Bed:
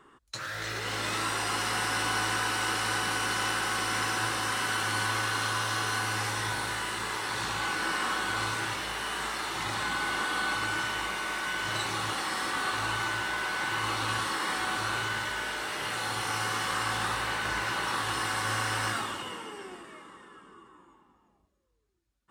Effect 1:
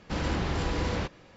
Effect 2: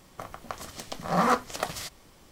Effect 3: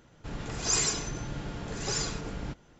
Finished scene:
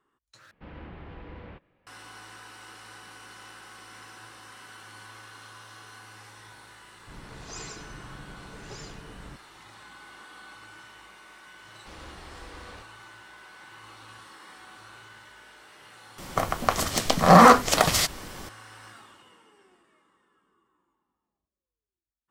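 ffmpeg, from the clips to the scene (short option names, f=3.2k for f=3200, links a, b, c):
-filter_complex "[1:a]asplit=2[a][b];[0:a]volume=-17.5dB[c];[a]lowpass=f=2.9k:w=0.5412,lowpass=f=2.9k:w=1.3066[d];[3:a]lowpass=f=2.9k:p=1[e];[b]equalizer=f=150:t=o:w=1.9:g=-10[f];[2:a]alimiter=level_in=15.5dB:limit=-1dB:release=50:level=0:latency=1[g];[c]asplit=2[h][i];[h]atrim=end=0.514[j];[d]atrim=end=1.36,asetpts=PTS-STARTPTS,volume=-14.5dB[k];[i]atrim=start=1.866[l];[e]atrim=end=2.79,asetpts=PTS-STARTPTS,volume=-8.5dB,afade=t=in:d=0.004:c=hsin,afade=t=out:st=2.786:d=0.004:c=hsin,adelay=6830[m];[f]atrim=end=1.36,asetpts=PTS-STARTPTS,volume=-13.5dB,afade=t=in:d=0.004:c=hsin,afade=t=out:st=1.356:d=0.004:c=hsin,adelay=11760[n];[g]atrim=end=2.31,asetpts=PTS-STARTPTS,volume=-1.5dB,afade=t=in:d=0.004:c=hsin,afade=t=out:st=2.306:d=0.004:c=hsin,adelay=16180[o];[j][k]acrossfade=d=0.004:c1=hsin:c2=hsin[p];[p][l]acrossfade=d=0.004:c1=hsin:c2=hsin[q];[q][m][n][o]amix=inputs=4:normalize=0"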